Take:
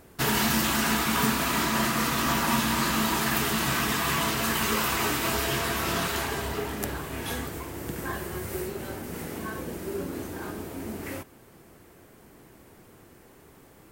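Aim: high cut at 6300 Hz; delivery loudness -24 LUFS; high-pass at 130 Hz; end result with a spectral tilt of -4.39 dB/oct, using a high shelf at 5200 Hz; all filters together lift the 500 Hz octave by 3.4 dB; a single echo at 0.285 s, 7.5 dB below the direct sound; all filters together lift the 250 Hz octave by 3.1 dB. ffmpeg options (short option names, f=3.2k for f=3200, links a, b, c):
-af "highpass=130,lowpass=6.3k,equalizer=f=250:t=o:g=3.5,equalizer=f=500:t=o:g=3.5,highshelf=f=5.2k:g=-4.5,aecho=1:1:285:0.422,volume=2.5dB"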